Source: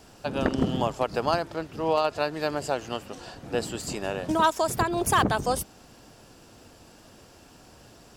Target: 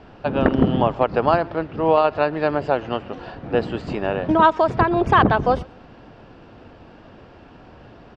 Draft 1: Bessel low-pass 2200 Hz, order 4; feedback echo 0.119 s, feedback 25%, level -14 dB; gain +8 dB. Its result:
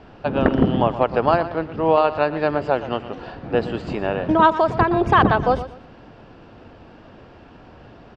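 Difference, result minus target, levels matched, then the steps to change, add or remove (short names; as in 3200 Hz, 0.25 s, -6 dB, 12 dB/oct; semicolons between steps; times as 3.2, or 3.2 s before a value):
echo-to-direct +11 dB
change: feedback echo 0.119 s, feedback 25%, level -25 dB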